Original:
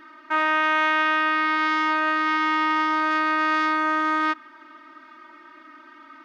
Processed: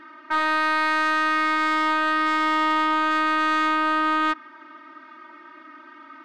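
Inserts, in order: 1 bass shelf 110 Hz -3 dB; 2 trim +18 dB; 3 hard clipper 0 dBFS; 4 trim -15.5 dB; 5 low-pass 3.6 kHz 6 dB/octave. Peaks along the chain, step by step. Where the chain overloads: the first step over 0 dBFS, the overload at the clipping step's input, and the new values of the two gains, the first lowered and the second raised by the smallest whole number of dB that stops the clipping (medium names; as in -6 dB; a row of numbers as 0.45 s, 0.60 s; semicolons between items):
-9.5 dBFS, +8.5 dBFS, 0.0 dBFS, -15.5 dBFS, -15.5 dBFS; step 2, 8.5 dB; step 2 +9 dB, step 4 -6.5 dB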